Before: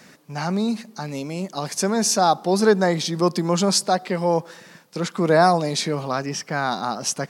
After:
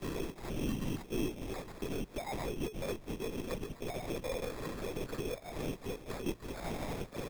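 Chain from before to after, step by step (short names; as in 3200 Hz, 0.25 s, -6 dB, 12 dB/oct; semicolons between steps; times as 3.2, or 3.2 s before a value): infinite clipping; HPF 46 Hz 12 dB/oct; notch 1100 Hz, Q 20; comb 3.7 ms, depth 45%; gate -19 dBFS, range -36 dB; tilt shelf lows +10 dB; small resonant body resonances 400/1200/1900 Hz, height 11 dB; LPC vocoder at 8 kHz whisper; sample-and-hold 15×; bell 74 Hz -9 dB 0.68 oct; three-band squash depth 70%; gain -8 dB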